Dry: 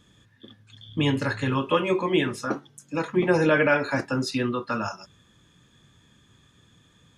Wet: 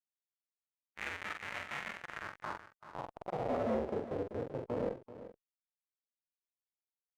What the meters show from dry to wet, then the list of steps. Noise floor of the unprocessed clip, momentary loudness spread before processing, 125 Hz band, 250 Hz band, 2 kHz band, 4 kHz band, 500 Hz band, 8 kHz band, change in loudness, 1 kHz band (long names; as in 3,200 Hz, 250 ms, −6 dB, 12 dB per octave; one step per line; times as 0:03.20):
−60 dBFS, 12 LU, −18.5 dB, −17.5 dB, −15.5 dB, −18.5 dB, −13.0 dB, below −15 dB, −14.5 dB, −12.5 dB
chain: parametric band 1,500 Hz −2.5 dB 0.22 octaves
mains-hum notches 60/120/180/240/300/360/420/480/540 Hz
single-sideband voice off tune −360 Hz 210–3,100 Hz
in parallel at −1.5 dB: downward compressor 20 to 1, threshold −37 dBFS, peak gain reduction 21.5 dB
on the sum: comparator with hysteresis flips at −24.5 dBFS
band-pass filter sweep 2,000 Hz → 470 Hz, 0:01.86–0:03.82
soft clipping −29.5 dBFS, distortion −21 dB
double-tracking delay 45 ms −8.5 dB
on a send: single-tap delay 385 ms −14 dB
on the sum: harmonic and percussive parts rebalanced percussive −8 dB
level +8 dB